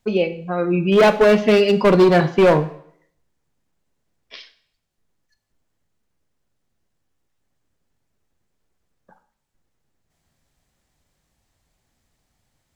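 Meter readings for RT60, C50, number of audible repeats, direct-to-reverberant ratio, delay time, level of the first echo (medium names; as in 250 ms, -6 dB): 0.60 s, 14.5 dB, no echo, 10.5 dB, no echo, no echo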